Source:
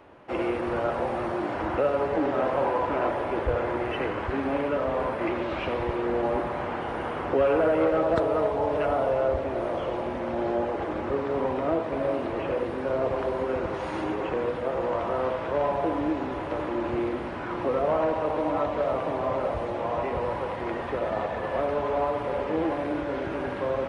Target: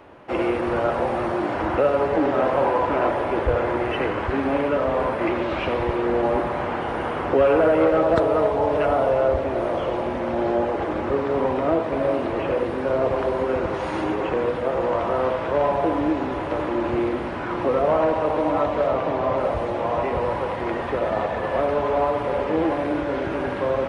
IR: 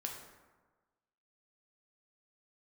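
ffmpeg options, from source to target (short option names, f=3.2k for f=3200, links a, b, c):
-filter_complex "[0:a]asettb=1/sr,asplit=3[a][b][c];[a]atrim=end=18.874[d];[b]atrim=start=18.87:end=19.37,asetpts=PTS-STARTPTS,afade=t=in:d=0.004:c=qsin,afade=t=out:st=0.496:d=0.004:c=qsin,lowpass=6.6k[e];[c]atrim=start=19.366[f];[d][e]acrossfade=d=0.004:c1=hsin:c2=qsin[g];[g][f]acrossfade=d=0.004:c1=qsin:c2=hsin,volume=5dB"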